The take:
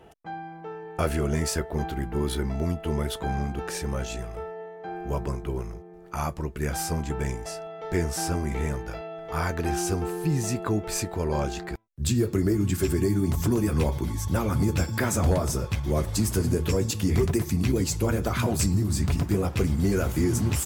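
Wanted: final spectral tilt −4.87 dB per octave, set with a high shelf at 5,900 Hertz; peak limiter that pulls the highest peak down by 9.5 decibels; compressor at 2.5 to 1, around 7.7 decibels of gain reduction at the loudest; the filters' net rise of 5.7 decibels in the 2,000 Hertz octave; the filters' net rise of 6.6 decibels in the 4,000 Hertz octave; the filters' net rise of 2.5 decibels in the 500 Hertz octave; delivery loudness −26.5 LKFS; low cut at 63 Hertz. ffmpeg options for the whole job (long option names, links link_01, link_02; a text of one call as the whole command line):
ffmpeg -i in.wav -af "highpass=63,equalizer=frequency=500:width_type=o:gain=3,equalizer=frequency=2000:width_type=o:gain=5.5,equalizer=frequency=4000:width_type=o:gain=8.5,highshelf=frequency=5900:gain=-3.5,acompressor=threshold=-30dB:ratio=2.5,volume=8.5dB,alimiter=limit=-16.5dB:level=0:latency=1" out.wav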